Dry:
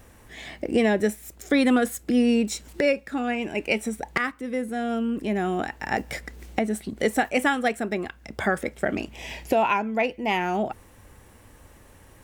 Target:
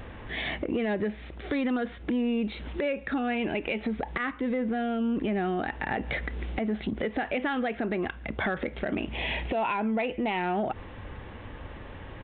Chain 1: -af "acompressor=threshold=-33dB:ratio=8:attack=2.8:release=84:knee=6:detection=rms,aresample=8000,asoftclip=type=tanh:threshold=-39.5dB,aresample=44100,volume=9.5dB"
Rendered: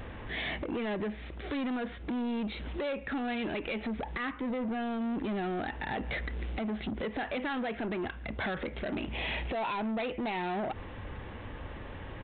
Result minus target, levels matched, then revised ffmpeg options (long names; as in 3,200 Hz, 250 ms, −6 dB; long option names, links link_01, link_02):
soft clipping: distortion +14 dB
-af "acompressor=threshold=-33dB:ratio=8:attack=2.8:release=84:knee=6:detection=rms,aresample=8000,asoftclip=type=tanh:threshold=-28dB,aresample=44100,volume=9.5dB"